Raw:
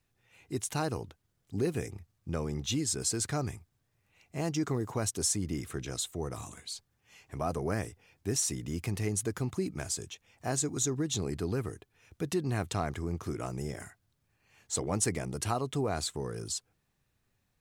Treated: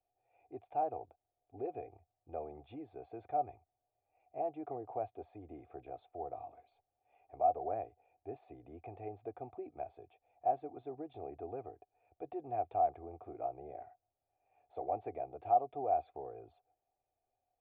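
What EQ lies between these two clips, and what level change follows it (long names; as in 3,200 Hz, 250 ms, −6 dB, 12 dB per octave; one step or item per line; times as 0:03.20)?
formant resonators in series a
low-shelf EQ 110 Hz −4.5 dB
phaser with its sweep stopped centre 440 Hz, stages 4
+15.0 dB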